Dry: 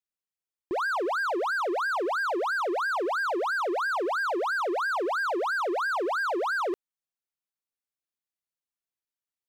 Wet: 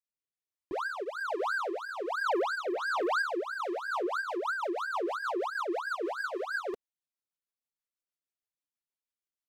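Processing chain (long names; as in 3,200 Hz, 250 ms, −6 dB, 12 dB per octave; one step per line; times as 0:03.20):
flanger 0.88 Hz, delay 2.9 ms, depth 9.7 ms, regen −8%
0:02.26–0:03.22: leveller curve on the samples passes 2
rotating-speaker cabinet horn 1.2 Hz, later 6.3 Hz, at 0:03.33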